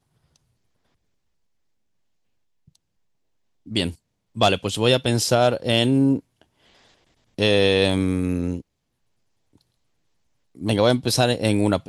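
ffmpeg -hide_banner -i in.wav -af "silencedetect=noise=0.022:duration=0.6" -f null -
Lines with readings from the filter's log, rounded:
silence_start: 0.00
silence_end: 3.67 | silence_duration: 3.67
silence_start: 6.19
silence_end: 7.39 | silence_duration: 1.19
silence_start: 8.60
silence_end: 10.59 | silence_duration: 1.98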